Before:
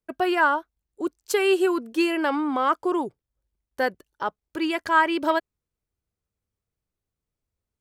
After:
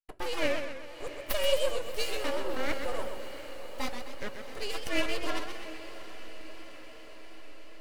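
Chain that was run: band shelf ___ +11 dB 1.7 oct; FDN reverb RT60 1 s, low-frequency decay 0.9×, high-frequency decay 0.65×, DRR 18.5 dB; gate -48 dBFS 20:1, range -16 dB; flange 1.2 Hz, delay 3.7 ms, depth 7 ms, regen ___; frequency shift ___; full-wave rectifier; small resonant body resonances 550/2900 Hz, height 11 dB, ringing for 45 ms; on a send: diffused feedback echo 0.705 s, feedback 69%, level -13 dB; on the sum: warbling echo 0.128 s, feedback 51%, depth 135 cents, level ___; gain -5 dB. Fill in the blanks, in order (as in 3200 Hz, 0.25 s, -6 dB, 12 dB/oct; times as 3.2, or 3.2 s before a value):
6700 Hz, -70%, -110 Hz, -7.5 dB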